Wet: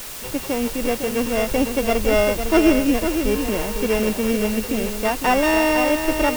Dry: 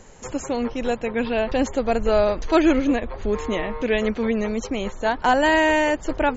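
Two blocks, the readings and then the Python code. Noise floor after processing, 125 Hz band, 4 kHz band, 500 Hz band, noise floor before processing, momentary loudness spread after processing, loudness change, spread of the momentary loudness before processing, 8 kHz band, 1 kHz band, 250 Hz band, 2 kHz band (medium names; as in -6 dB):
-32 dBFS, +3.0 dB, +4.0 dB, +1.5 dB, -39 dBFS, 7 LU, +2.0 dB, 9 LU, no reading, -0.5 dB, +2.5 dB, 0.0 dB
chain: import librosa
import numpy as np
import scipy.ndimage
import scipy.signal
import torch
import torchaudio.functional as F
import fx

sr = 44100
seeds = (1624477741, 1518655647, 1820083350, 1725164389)

y = np.r_[np.sort(x[:len(x) // 16 * 16].reshape(-1, 16), axis=1).ravel(), x[len(x) // 16 * 16:]]
y = fx.lowpass(y, sr, hz=1600.0, slope=6)
y = fx.quant_dither(y, sr, seeds[0], bits=6, dither='triangular')
y = y + 10.0 ** (-7.5 / 20.0) * np.pad(y, (int(505 * sr / 1000.0), 0))[:len(y)]
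y = y * 10.0 ** (2.0 / 20.0)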